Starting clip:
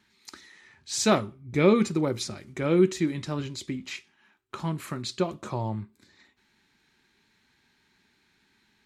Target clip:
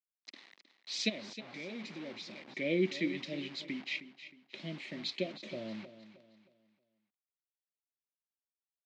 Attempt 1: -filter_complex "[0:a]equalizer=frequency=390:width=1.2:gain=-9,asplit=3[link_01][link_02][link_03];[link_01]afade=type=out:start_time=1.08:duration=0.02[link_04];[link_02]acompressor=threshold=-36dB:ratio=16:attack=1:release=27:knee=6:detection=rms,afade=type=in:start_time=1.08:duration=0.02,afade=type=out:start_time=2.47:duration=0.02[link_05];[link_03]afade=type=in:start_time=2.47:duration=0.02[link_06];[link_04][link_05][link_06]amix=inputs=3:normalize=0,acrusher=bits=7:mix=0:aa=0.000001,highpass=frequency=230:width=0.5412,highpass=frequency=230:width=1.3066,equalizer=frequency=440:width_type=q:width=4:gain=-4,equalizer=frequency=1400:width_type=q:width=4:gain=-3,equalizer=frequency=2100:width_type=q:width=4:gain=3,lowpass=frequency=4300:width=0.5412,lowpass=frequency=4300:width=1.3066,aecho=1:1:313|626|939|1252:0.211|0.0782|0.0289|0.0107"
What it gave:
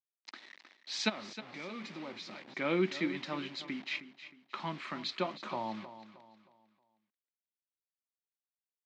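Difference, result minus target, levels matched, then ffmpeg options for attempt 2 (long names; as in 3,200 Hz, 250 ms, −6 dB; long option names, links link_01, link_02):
1,000 Hz band +14.5 dB
-filter_complex "[0:a]asuperstop=centerf=1100:order=12:qfactor=0.89,equalizer=frequency=390:width=1.2:gain=-9,asplit=3[link_01][link_02][link_03];[link_01]afade=type=out:start_time=1.08:duration=0.02[link_04];[link_02]acompressor=threshold=-36dB:ratio=16:attack=1:release=27:knee=6:detection=rms,afade=type=in:start_time=1.08:duration=0.02,afade=type=out:start_time=2.47:duration=0.02[link_05];[link_03]afade=type=in:start_time=2.47:duration=0.02[link_06];[link_04][link_05][link_06]amix=inputs=3:normalize=0,acrusher=bits=7:mix=0:aa=0.000001,highpass=frequency=230:width=0.5412,highpass=frequency=230:width=1.3066,equalizer=frequency=440:width_type=q:width=4:gain=-4,equalizer=frequency=1400:width_type=q:width=4:gain=-3,equalizer=frequency=2100:width_type=q:width=4:gain=3,lowpass=frequency=4300:width=0.5412,lowpass=frequency=4300:width=1.3066,aecho=1:1:313|626|939|1252:0.211|0.0782|0.0289|0.0107"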